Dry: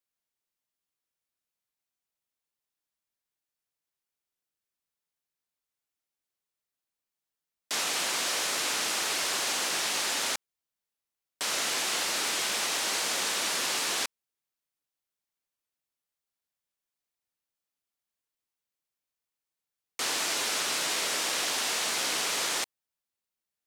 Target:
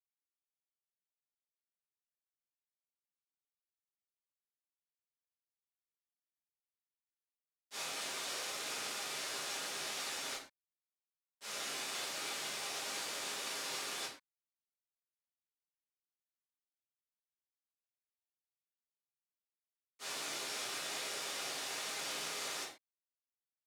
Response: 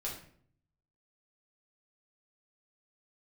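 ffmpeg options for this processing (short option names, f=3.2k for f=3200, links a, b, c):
-filter_complex "[0:a]agate=range=-33dB:threshold=-20dB:ratio=3:detection=peak[a];[1:a]atrim=start_sample=2205,atrim=end_sample=6174[b];[a][b]afir=irnorm=-1:irlink=0,volume=1dB"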